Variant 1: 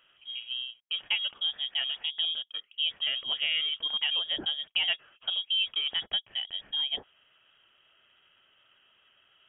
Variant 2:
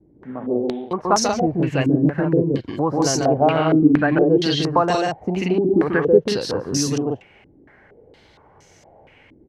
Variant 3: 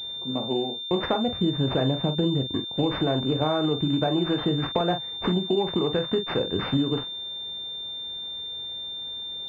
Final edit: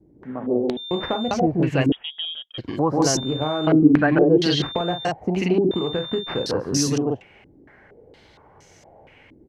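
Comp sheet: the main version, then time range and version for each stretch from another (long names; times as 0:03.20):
2
0:00.77–0:01.31: punch in from 3
0:01.92–0:02.58: punch in from 1
0:03.17–0:03.67: punch in from 3
0:04.62–0:05.05: punch in from 3
0:05.71–0:06.46: punch in from 3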